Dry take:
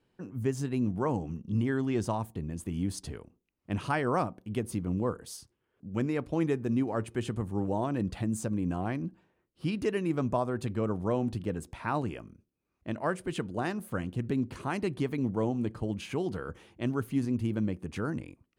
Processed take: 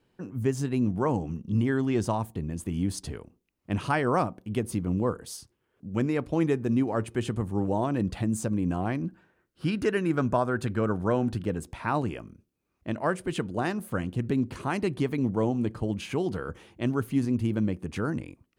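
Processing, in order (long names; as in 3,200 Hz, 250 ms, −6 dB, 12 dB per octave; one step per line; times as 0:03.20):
0:09.06–0:11.46: parametric band 1,500 Hz +10 dB 0.41 octaves
level +3.5 dB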